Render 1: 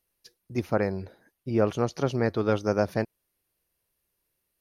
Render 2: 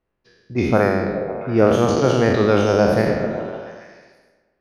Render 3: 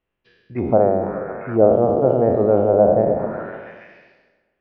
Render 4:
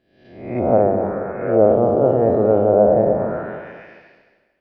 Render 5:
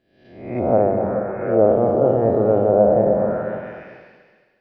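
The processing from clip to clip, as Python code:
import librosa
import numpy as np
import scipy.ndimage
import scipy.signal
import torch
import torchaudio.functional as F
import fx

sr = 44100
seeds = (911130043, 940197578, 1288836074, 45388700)

y1 = fx.spec_trails(x, sr, decay_s=1.45)
y1 = fx.env_lowpass(y1, sr, base_hz=1500.0, full_db=-17.5)
y1 = fx.echo_stepped(y1, sr, ms=138, hz=180.0, octaves=0.7, feedback_pct=70, wet_db=-2.5)
y1 = y1 * librosa.db_to_amplitude(6.0)
y2 = fx.envelope_lowpass(y1, sr, base_hz=670.0, top_hz=3000.0, q=3.0, full_db=-14.0, direction='down')
y2 = y2 * librosa.db_to_amplitude(-4.0)
y3 = fx.spec_swells(y2, sr, rise_s=0.69)
y3 = fx.echo_feedback(y3, sr, ms=220, feedback_pct=30, wet_db=-11.5)
y3 = y3 * librosa.db_to_amplitude(-1.0)
y4 = fx.rev_gated(y3, sr, seeds[0], gate_ms=460, shape='rising', drr_db=11.0)
y4 = y4 * librosa.db_to_amplitude(-1.5)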